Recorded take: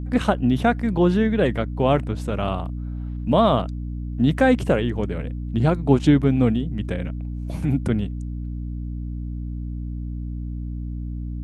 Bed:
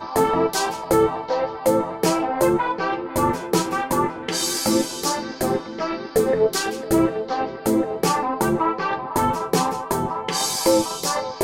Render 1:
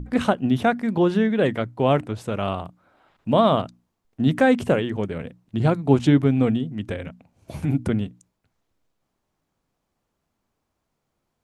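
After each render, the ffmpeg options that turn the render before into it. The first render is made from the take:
-af "bandreject=f=60:t=h:w=6,bandreject=f=120:t=h:w=6,bandreject=f=180:t=h:w=6,bandreject=f=240:t=h:w=6,bandreject=f=300:t=h:w=6"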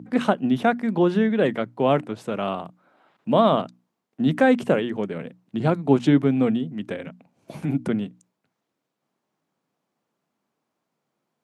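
-af "highpass=f=150:w=0.5412,highpass=f=150:w=1.3066,highshelf=f=4.9k:g=-5"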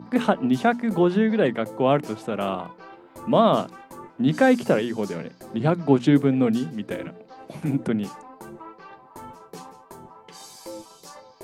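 -filter_complex "[1:a]volume=-20.5dB[a];[0:a][a]amix=inputs=2:normalize=0"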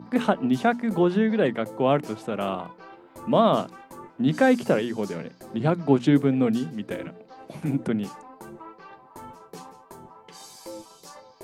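-af "volume=-1.5dB"

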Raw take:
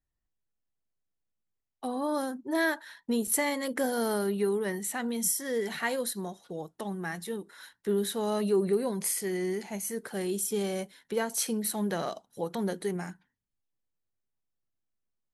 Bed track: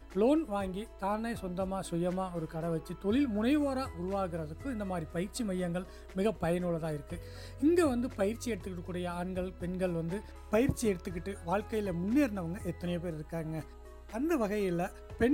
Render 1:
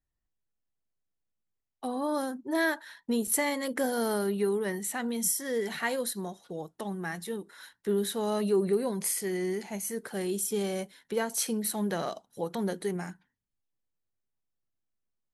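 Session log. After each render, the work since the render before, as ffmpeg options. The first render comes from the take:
-af anull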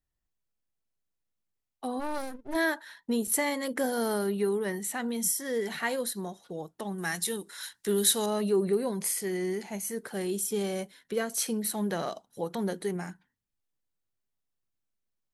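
-filter_complex "[0:a]asplit=3[a][b][c];[a]afade=t=out:st=1.99:d=0.02[d];[b]aeval=exprs='max(val(0),0)':c=same,afade=t=in:st=1.99:d=0.02,afade=t=out:st=2.54:d=0.02[e];[c]afade=t=in:st=2.54:d=0.02[f];[d][e][f]amix=inputs=3:normalize=0,asettb=1/sr,asplit=3[g][h][i];[g]atrim=end=6.984[j];[h]atrim=start=6.98:end=8.26,asetpts=PTS-STARTPTS,afade=t=in:d=0.004:c=qsin,afade=t=out:st=1.276:d=0.004:c=qsin,equalizer=f=8k:w=0.31:g=14[k];[i]atrim=start=8.256[l];[j][k]acrossfade=d=0.004:c1=hsin:c2=qsin[m];[m][l]acrossfade=d=0.004:c1=qsin:c2=hsin,asettb=1/sr,asplit=3[n][o][p];[n]atrim=end=10.984[q];[o]atrim=start=10.98:end=11.43,asetpts=PTS-STARTPTS,afade=t=in:d=0.004:c=qsin,afade=t=out:st=0.446:d=0.004:c=qsin,bandreject=f=880:w=5.1[r];[p]atrim=start=11.426[s];[q][r]acrossfade=d=0.004:c1=hsin:c2=qsin[t];[t][s]acrossfade=d=0.004:c1=qsin:c2=hsin"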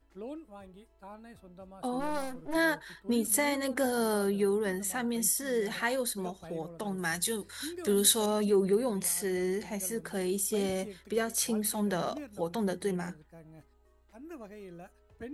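-filter_complex "[1:a]volume=-15dB[a];[0:a][a]amix=inputs=2:normalize=0"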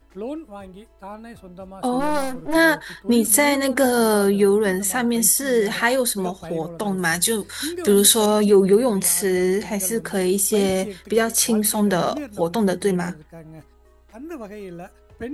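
-af "volume=11.5dB,alimiter=limit=-2dB:level=0:latency=1"

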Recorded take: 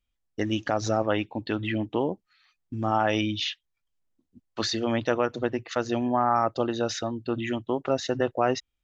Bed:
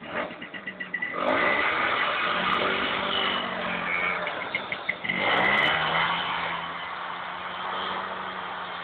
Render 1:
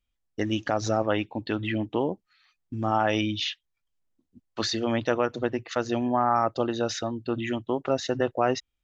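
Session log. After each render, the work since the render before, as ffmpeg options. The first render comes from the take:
-af anull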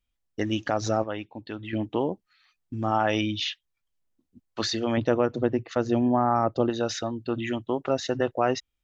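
-filter_complex "[0:a]asettb=1/sr,asplit=3[a][b][c];[a]atrim=end=4.974[d];[b]atrim=start=4.97:end=6.7,asetpts=PTS-STARTPTS,afade=t=in:d=0.004:c=qsin,afade=t=out:st=1.726:d=0.004:c=qsin,tiltshelf=f=760:g=5.5[e];[c]atrim=start=6.696[f];[d][e]acrossfade=d=0.004:c1=hsin:c2=qsin[g];[g][f]acrossfade=d=0.004:c1=qsin:c2=hsin,asplit=3[h][i][j];[h]atrim=end=1.042[k];[i]atrim=start=1.038:end=1.732,asetpts=PTS-STARTPTS,volume=-7.5dB[l];[j]atrim=start=1.728[m];[k][l]acrossfade=d=0.004:c1=hsin:c2=hsin[n];[n][m]acrossfade=d=0.004:c1=hsin:c2=hsin"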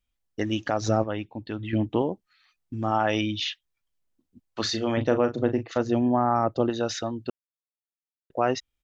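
-filter_complex "[0:a]asettb=1/sr,asplit=3[a][b][c];[a]atrim=end=0.884[d];[b]atrim=start=0.88:end=2.02,asetpts=PTS-STARTPTS,afade=t=in:d=0.004:c=qsin,afade=t=out:st=1.136:d=0.004:c=qsin,lowshelf=f=250:g=7.5[e];[c]atrim=start=2.016[f];[d][e]acrossfade=d=0.004:c1=hsin:c2=qsin[g];[g][f]acrossfade=d=0.004:c1=qsin:c2=hsin,asplit=3[h][i][j];[h]afade=t=out:st=4.64:d=0.02[k];[i]asplit=2[l][m];[m]adelay=37,volume=-9.5dB[n];[l][n]amix=inputs=2:normalize=0,afade=t=in:st=4.64:d=0.02,afade=t=out:st=5.81:d=0.02[o];[j]afade=t=in:st=5.81:d=0.02[p];[k][o][p]amix=inputs=3:normalize=0,asplit=3[q][r][s];[q]atrim=end=7.3,asetpts=PTS-STARTPTS,afade=t=out:st=7.296:d=0.004:c=hsin[t];[r]atrim=start=7.3:end=8.3,asetpts=PTS-STARTPTS,volume=0[u];[s]atrim=start=8.3,asetpts=PTS-STARTPTS,afade=t=in:d=0.004:c=hsin[v];[t][u][v]concat=n=3:v=0:a=1"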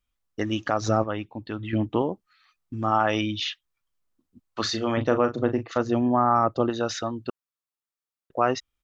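-af "equalizer=f=1.2k:w=2.9:g=7"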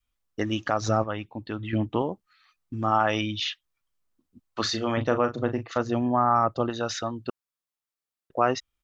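-af "adynamicequalizer=threshold=0.0141:dfrequency=330:dqfactor=1:tfrequency=330:tqfactor=1:attack=5:release=100:ratio=0.375:range=2.5:mode=cutabove:tftype=bell"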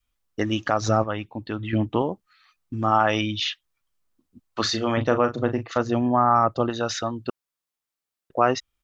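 -af "volume=3dB"

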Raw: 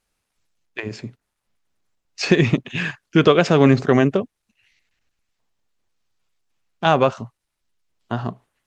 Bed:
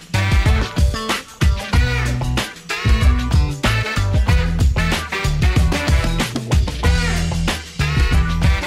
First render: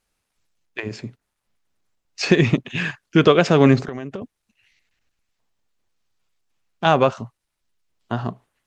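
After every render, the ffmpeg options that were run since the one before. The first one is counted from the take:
-filter_complex "[0:a]asettb=1/sr,asplit=3[a][b][c];[a]atrim=end=3.814[d];[b]atrim=start=3.81:end=4.22,asetpts=PTS-STARTPTS,afade=t=in:d=0.004:c=qsin,afade=t=out:st=0.406:d=0.004:c=qsin,acompressor=threshold=-26dB:ratio=12:attack=3.2:release=140:knee=1:detection=peak[e];[c]atrim=start=4.216[f];[d][e]acrossfade=d=0.004:c1=hsin:c2=qsin[g];[g][f]acrossfade=d=0.004:c1=qsin:c2=hsin"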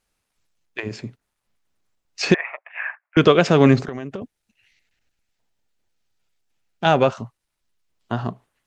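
-filter_complex "[0:a]asettb=1/sr,asplit=3[a][b][c];[a]atrim=end=2.344[d];[b]atrim=start=2.34:end=3.17,asetpts=PTS-STARTPTS,afade=t=in:d=0.004:c=qsin,afade=t=out:st=0.826:d=0.004:c=qsin,asuperpass=centerf=1200:order=12:qfactor=0.7[e];[c]atrim=start=3.166[f];[d][e]acrossfade=d=0.004:c1=hsin:c2=qsin[g];[g][f]acrossfade=d=0.004:c1=qsin:c2=hsin,asettb=1/sr,asplit=3[h][i][j];[h]atrim=end=4.214[k];[i]atrim=start=4.21:end=7.07,asetpts=PTS-STARTPTS,afade=t=in:d=0.004:c=qsin,afade=t=out:st=2.856:d=0.004:c=qsin,bandreject=f=1.1k:w=6.1[l];[j]atrim=start=7.066[m];[k][l]acrossfade=d=0.004:c1=hsin:c2=qsin[n];[n][m]acrossfade=d=0.004:c1=qsin:c2=hsin"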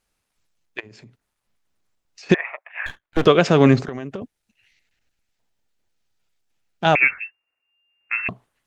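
-filter_complex "[0:a]asplit=3[a][b][c];[a]afade=t=out:st=0.79:d=0.02[d];[b]acompressor=threshold=-43dB:ratio=5:attack=3.2:release=140:knee=1:detection=peak,afade=t=in:st=0.79:d=0.02,afade=t=out:st=2.29:d=0.02[e];[c]afade=t=in:st=2.29:d=0.02[f];[d][e][f]amix=inputs=3:normalize=0,asettb=1/sr,asplit=3[g][h][i];[g]atrim=end=2.864[j];[h]atrim=start=2.86:end=3.26,asetpts=PTS-STARTPTS,afade=t=in:d=0.004:c=qsin,afade=t=out:st=0.396:d=0.004:c=qsin,aeval=exprs='max(val(0),0)':c=same[k];[i]atrim=start=3.256[l];[j][k]acrossfade=d=0.004:c1=hsin:c2=qsin[m];[m][l]acrossfade=d=0.004:c1=qsin:c2=hsin,asettb=1/sr,asplit=3[n][o][p];[n]atrim=end=6.954[q];[o]atrim=start=6.95:end=8.29,asetpts=PTS-STARTPTS,afade=t=in:d=0.004:c=qsin,afade=t=out:st=1.336:d=0.004:c=qsin,lowpass=f=2.4k:t=q:w=0.5098,lowpass=f=2.4k:t=q:w=0.6013,lowpass=f=2.4k:t=q:w=0.9,lowpass=f=2.4k:t=q:w=2.563,afreqshift=-2800[r];[p]atrim=start=8.286[s];[q][r]acrossfade=d=0.004:c1=hsin:c2=qsin[t];[t][s]acrossfade=d=0.004:c1=qsin:c2=hsin"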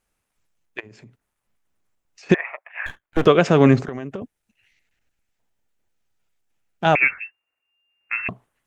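-af "equalizer=f=4.4k:w=1.4:g=-6"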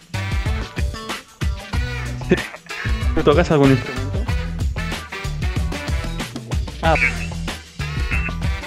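-filter_complex "[1:a]volume=-7dB[a];[0:a][a]amix=inputs=2:normalize=0"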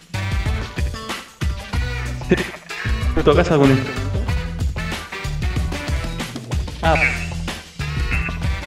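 -af "aecho=1:1:83|166|249:0.282|0.0761|0.0205"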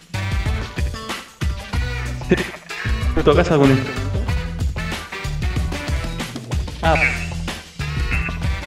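-af anull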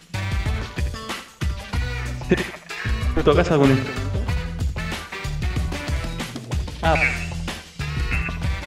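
-af "volume=-2.5dB"

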